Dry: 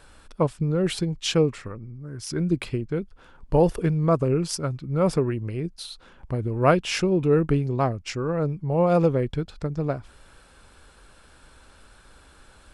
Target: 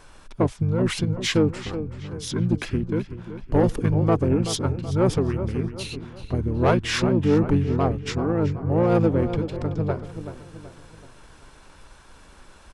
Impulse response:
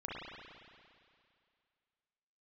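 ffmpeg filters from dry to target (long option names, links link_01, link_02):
-filter_complex "[0:a]asplit=2[link_01][link_02];[link_02]adelay=379,lowpass=frequency=4300:poles=1,volume=-12dB,asplit=2[link_03][link_04];[link_04]adelay=379,lowpass=frequency=4300:poles=1,volume=0.45,asplit=2[link_05][link_06];[link_06]adelay=379,lowpass=frequency=4300:poles=1,volume=0.45,asplit=2[link_07][link_08];[link_08]adelay=379,lowpass=frequency=4300:poles=1,volume=0.45,asplit=2[link_09][link_10];[link_10]adelay=379,lowpass=frequency=4300:poles=1,volume=0.45[link_11];[link_01][link_03][link_05][link_07][link_09][link_11]amix=inputs=6:normalize=0,asoftclip=type=tanh:threshold=-14dB,asplit=2[link_12][link_13];[link_13]asetrate=29433,aresample=44100,atempo=1.49831,volume=-1dB[link_14];[link_12][link_14]amix=inputs=2:normalize=0"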